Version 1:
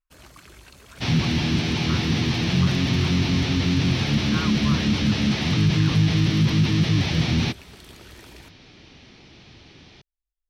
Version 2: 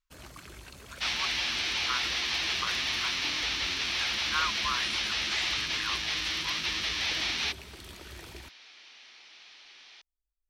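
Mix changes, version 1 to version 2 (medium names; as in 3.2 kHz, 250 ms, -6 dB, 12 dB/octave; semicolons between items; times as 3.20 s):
speech: remove distance through air 470 m; second sound: add high-pass 1.2 kHz 12 dB/octave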